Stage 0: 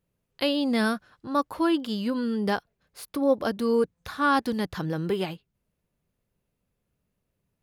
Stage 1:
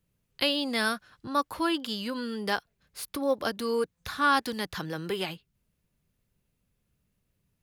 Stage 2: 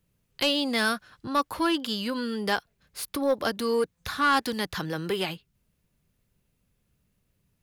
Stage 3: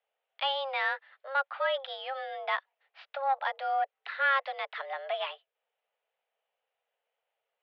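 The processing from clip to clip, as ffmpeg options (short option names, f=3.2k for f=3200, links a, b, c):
-filter_complex "[0:a]equalizer=f=600:w=0.55:g=-7,acrossover=split=370|1100[a][b][c];[a]acompressor=threshold=-43dB:ratio=6[d];[d][b][c]amix=inputs=3:normalize=0,volume=4dB"
-af "asoftclip=type=tanh:threshold=-18dB,volume=3.5dB"
-af "highpass=f=290:t=q:w=0.5412,highpass=f=290:t=q:w=1.307,lowpass=f=3.1k:t=q:w=0.5176,lowpass=f=3.1k:t=q:w=0.7071,lowpass=f=3.1k:t=q:w=1.932,afreqshift=270,volume=-3.5dB"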